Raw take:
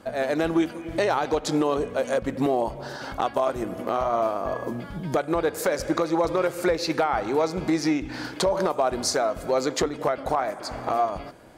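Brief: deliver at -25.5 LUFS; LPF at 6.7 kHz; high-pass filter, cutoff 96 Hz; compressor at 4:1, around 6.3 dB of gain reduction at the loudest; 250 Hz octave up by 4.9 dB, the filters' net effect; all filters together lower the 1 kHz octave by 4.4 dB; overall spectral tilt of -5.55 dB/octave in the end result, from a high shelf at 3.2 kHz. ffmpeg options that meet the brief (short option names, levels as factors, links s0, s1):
-af "highpass=96,lowpass=6700,equalizer=f=250:t=o:g=7.5,equalizer=f=1000:t=o:g=-6.5,highshelf=f=3200:g=-6.5,acompressor=threshold=0.0794:ratio=4,volume=1.33"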